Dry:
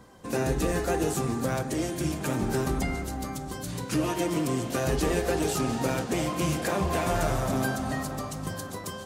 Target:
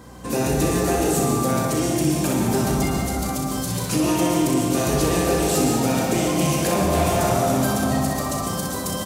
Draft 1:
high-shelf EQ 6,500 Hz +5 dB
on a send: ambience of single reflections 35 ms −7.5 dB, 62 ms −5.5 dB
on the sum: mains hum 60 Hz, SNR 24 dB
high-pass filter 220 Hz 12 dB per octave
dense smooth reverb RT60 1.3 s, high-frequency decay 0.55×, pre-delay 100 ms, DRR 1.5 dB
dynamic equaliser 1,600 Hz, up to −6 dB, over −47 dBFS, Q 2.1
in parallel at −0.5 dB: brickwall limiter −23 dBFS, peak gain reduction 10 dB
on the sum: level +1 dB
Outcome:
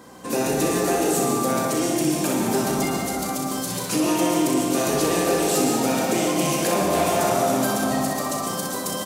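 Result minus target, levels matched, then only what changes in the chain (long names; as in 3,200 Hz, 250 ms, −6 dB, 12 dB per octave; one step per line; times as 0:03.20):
125 Hz band −6.5 dB
change: high-pass filter 68 Hz 12 dB per octave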